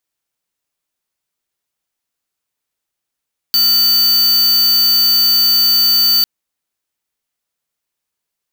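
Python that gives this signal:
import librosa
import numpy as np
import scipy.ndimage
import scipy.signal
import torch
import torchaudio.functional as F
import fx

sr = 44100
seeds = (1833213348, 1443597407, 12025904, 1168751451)

y = fx.tone(sr, length_s=2.7, wave='square', hz=4570.0, level_db=-11.5)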